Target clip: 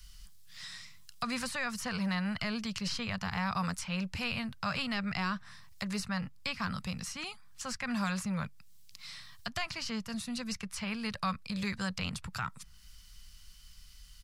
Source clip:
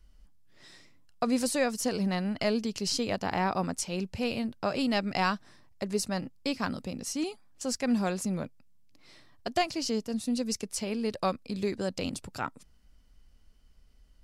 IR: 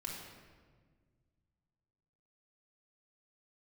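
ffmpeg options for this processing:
-filter_complex "[0:a]firequalizer=gain_entry='entry(180,0);entry(290,-24);entry(1100,3);entry(3800,14)':delay=0.05:min_phase=1,acrossover=split=280|2000[link_01][link_02][link_03];[link_01]asoftclip=type=tanh:threshold=-39dB[link_04];[link_02]alimiter=level_in=6dB:limit=-24dB:level=0:latency=1,volume=-6dB[link_05];[link_03]acompressor=threshold=-52dB:ratio=5[link_06];[link_04][link_05][link_06]amix=inputs=3:normalize=0,volume=5dB"

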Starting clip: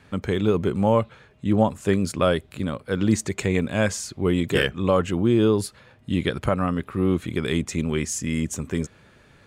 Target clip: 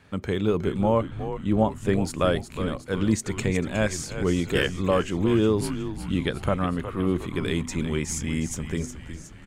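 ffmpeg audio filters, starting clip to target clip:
ffmpeg -i in.wav -filter_complex "[0:a]bandreject=frequency=123.9:width_type=h:width=4,bandreject=frequency=247.8:width_type=h:width=4,bandreject=frequency=371.7:width_type=h:width=4,asplit=8[link_01][link_02][link_03][link_04][link_05][link_06][link_07][link_08];[link_02]adelay=363,afreqshift=-87,volume=-10dB[link_09];[link_03]adelay=726,afreqshift=-174,volume=-14.9dB[link_10];[link_04]adelay=1089,afreqshift=-261,volume=-19.8dB[link_11];[link_05]adelay=1452,afreqshift=-348,volume=-24.6dB[link_12];[link_06]adelay=1815,afreqshift=-435,volume=-29.5dB[link_13];[link_07]adelay=2178,afreqshift=-522,volume=-34.4dB[link_14];[link_08]adelay=2541,afreqshift=-609,volume=-39.3dB[link_15];[link_01][link_09][link_10][link_11][link_12][link_13][link_14][link_15]amix=inputs=8:normalize=0,asplit=3[link_16][link_17][link_18];[link_16]afade=type=out:start_time=0.79:duration=0.02[link_19];[link_17]adynamicequalizer=threshold=0.01:dfrequency=2600:dqfactor=0.7:tfrequency=2600:tqfactor=0.7:attack=5:release=100:ratio=0.375:range=2:mode=cutabove:tftype=highshelf,afade=type=in:start_time=0.79:duration=0.02,afade=type=out:start_time=1.95:duration=0.02[link_20];[link_18]afade=type=in:start_time=1.95:duration=0.02[link_21];[link_19][link_20][link_21]amix=inputs=3:normalize=0,volume=-2.5dB" out.wav

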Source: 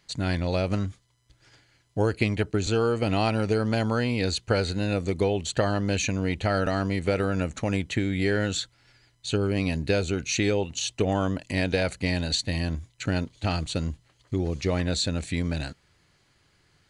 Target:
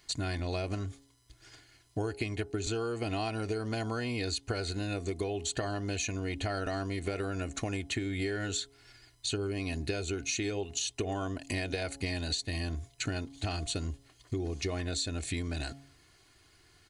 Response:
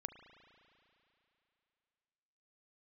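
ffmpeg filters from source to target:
-af "highshelf=frequency=6900:gain=8,aecho=1:1:2.8:0.54,bandreject=frequency=138.1:width_type=h:width=4,bandreject=frequency=276.2:width_type=h:width=4,bandreject=frequency=414.3:width_type=h:width=4,bandreject=frequency=552.4:width_type=h:width=4,bandreject=frequency=690.5:width_type=h:width=4,bandreject=frequency=828.6:width_type=h:width=4,acompressor=threshold=-31dB:ratio=6"

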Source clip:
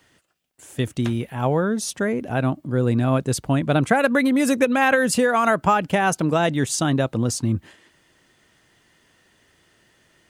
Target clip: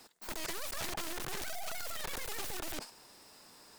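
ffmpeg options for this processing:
ffmpeg -i in.wav -af "aeval=exprs='(tanh(50.1*val(0)+0.6)-tanh(0.6))/50.1':channel_layout=same,aeval=exprs='(mod(59.6*val(0)+1,2)-1)/59.6':channel_layout=same,asetrate=119952,aresample=44100,volume=5.5dB" out.wav

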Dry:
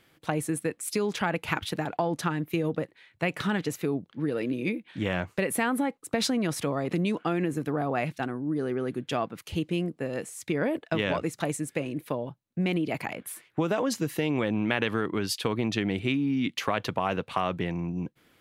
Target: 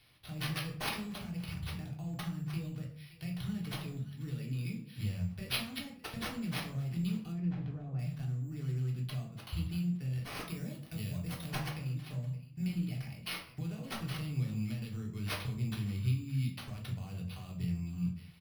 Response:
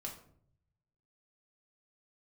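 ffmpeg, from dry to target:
-filter_complex "[0:a]asplit=2[link_01][link_02];[link_02]alimiter=limit=-19dB:level=0:latency=1,volume=-2dB[link_03];[link_01][link_03]amix=inputs=2:normalize=0,aecho=1:1:567:0.075,acrossover=split=610|7600[link_04][link_05][link_06];[link_05]acompressor=threshold=-44dB:ratio=6[link_07];[link_04][link_07][link_06]amix=inputs=3:normalize=0,firequalizer=gain_entry='entry(100,0);entry(300,-26);entry(2600,-1)':delay=0.05:min_phase=1,acrusher=samples=6:mix=1:aa=0.000001,asettb=1/sr,asplit=3[link_08][link_09][link_10];[link_08]atrim=end=7.324[link_11];[link_09]atrim=start=7.32:end=7.99,asetpts=PTS-STARTPTS,afade=type=in:duration=0.004:curve=qsin,afade=type=out:start_time=0.666:duration=0.004:curve=qsin,adynamicsmooth=sensitivity=3:basefreq=2000[link_12];[link_10]atrim=start=7.986[link_13];[link_11][link_12]acrossfade=duration=0.004:curve1=hsin:curve2=qsin[link_14];[link_14][link_13]acrossfade=duration=0.004:curve1=qsin:curve2=hsin,asettb=1/sr,asplit=3[link_15][link_16][link_17];[link_15]atrim=end=10.474[link_18];[link_16]atrim=start=10.47:end=11.48,asetpts=PTS-STARTPTS,afade=type=in:duration=0.004:curve=qsin,afade=type=out:start_time=1.006:duration=0.004:curve=qsin,highshelf=frequency=8200:gain=10[link_19];[link_17]atrim=start=11.476[link_20];[link_18][link_19]acrossfade=duration=0.004:curve1=hsin:curve2=qsin[link_21];[link_21][link_20]acrossfade=duration=0.004:curve1=qsin:curve2=hsin[link_22];[1:a]atrim=start_sample=2205,afade=type=out:start_time=0.29:duration=0.01,atrim=end_sample=13230[link_23];[link_22][link_23]afir=irnorm=-1:irlink=0"

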